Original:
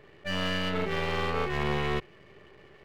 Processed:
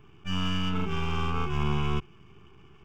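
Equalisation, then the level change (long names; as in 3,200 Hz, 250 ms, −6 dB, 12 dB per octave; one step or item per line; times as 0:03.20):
low-shelf EQ 340 Hz +6.5 dB
phaser with its sweep stopped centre 2,800 Hz, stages 8
0.0 dB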